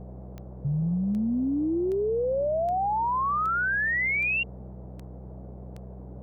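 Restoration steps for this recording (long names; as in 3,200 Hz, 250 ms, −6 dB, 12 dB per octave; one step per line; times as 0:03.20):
click removal
hum removal 63 Hz, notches 3
noise reduction from a noise print 30 dB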